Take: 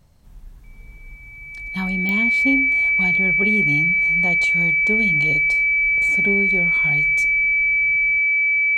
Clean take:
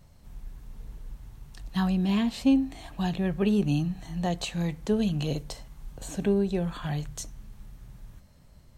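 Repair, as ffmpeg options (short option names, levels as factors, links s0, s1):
-af "adeclick=t=4,bandreject=f=2300:w=30"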